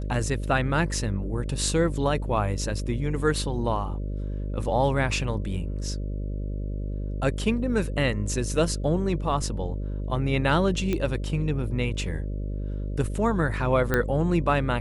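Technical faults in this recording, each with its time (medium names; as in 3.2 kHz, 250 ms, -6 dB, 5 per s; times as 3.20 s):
buzz 50 Hz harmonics 12 -30 dBFS
10.93 s: pop -14 dBFS
13.94 s: pop -10 dBFS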